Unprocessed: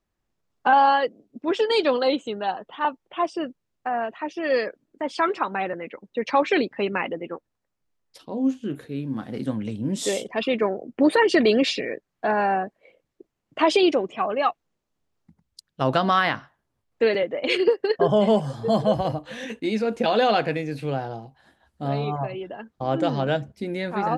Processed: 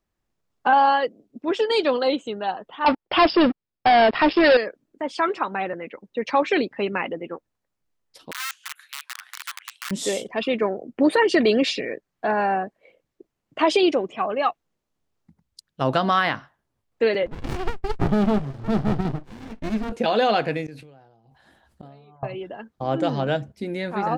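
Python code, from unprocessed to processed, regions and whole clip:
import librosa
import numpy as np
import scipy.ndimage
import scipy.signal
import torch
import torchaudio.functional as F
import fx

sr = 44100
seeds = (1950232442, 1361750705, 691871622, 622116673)

y = fx.chain(x, sr, fx.leveller(passes=5),
    fx.brickwall_lowpass(high_hz=5400.0), at=(2.86, 4.57))
y = fx.chain(y, sr, fx.overflow_wrap(gain_db=22.0),
    fx.steep_highpass(hz=1200.0, slope=36), at=(8.31, 9.91))
y = fx.chain(y, sr, fx.lowpass(hz=4200.0, slope=12),
    fx.running_max(window=65), at=(17.26, 19.92))
y = fx.chain(y, sr, fx.gate_flip(shuts_db=-26.0, range_db=-25),
    fx.sustainer(db_per_s=48.0), at=(20.66, 22.23))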